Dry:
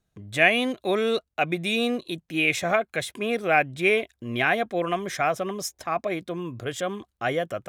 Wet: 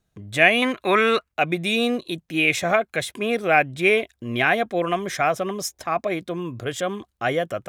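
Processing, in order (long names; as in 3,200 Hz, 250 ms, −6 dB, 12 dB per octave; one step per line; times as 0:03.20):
0:00.62–0:01.32: flat-topped bell 1,600 Hz +11.5 dB
level +3 dB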